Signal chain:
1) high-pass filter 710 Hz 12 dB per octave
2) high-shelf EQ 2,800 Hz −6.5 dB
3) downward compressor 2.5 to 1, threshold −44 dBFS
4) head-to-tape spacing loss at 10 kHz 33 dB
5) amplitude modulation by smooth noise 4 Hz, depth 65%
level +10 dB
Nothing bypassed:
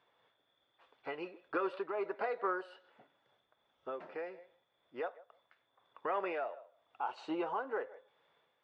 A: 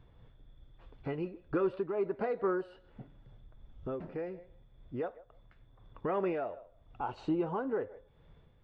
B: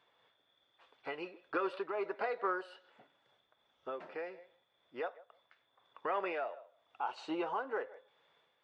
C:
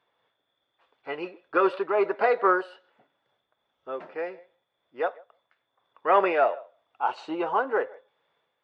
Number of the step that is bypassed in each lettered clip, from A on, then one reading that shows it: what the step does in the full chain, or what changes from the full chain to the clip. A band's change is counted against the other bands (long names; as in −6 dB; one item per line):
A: 1, 250 Hz band +9.5 dB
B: 2, 4 kHz band +3.0 dB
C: 3, average gain reduction 10.0 dB